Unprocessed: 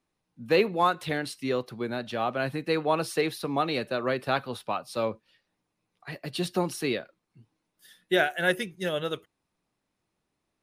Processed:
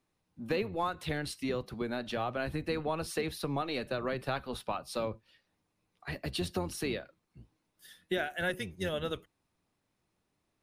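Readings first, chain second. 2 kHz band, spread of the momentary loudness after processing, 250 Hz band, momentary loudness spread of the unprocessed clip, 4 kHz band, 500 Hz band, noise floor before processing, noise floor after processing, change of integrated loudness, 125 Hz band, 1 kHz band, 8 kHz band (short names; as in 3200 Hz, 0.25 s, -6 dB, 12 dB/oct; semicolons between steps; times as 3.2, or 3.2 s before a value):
-7.5 dB, 5 LU, -5.5 dB, 10 LU, -6.0 dB, -7.0 dB, -81 dBFS, -81 dBFS, -7.0 dB, -3.0 dB, -8.0 dB, -3.5 dB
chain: octaver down 1 oct, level -4 dB; compressor 3:1, threshold -32 dBFS, peak gain reduction 11.5 dB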